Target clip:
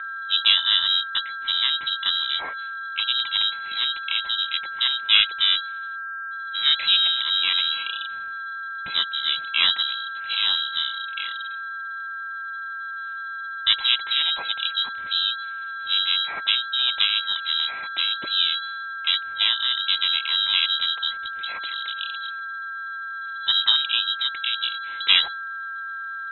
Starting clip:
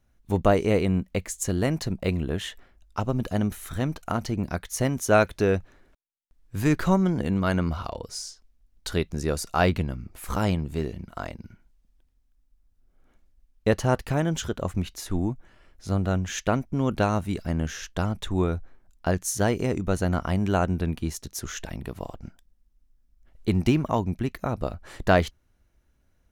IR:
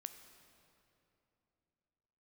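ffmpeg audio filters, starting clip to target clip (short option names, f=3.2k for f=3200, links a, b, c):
-filter_complex "[0:a]aeval=exprs='val(0)+0.0282*sin(2*PI*2400*n/s)':c=same,lowpass=f=3.4k:t=q:w=0.5098,lowpass=f=3.4k:t=q:w=0.6013,lowpass=f=3.4k:t=q:w=0.9,lowpass=f=3.4k:t=q:w=2.563,afreqshift=-4000,asplit=2[a][b];[b]asetrate=37084,aresample=44100,atempo=1.18921,volume=-4dB[c];[a][c]amix=inputs=2:normalize=0"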